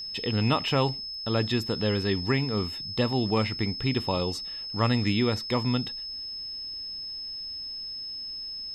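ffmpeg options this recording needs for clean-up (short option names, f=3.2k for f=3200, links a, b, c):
-af "bandreject=f=5.2k:w=30"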